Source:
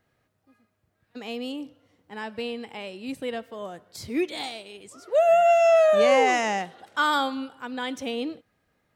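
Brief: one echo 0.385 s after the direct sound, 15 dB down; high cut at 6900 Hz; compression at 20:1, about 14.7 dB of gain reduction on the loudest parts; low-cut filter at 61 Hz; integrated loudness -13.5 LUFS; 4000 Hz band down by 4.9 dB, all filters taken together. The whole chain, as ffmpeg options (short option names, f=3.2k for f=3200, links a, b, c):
-af "highpass=61,lowpass=6.9k,equalizer=f=4k:t=o:g=-6.5,acompressor=threshold=-30dB:ratio=20,aecho=1:1:385:0.178,volume=22.5dB"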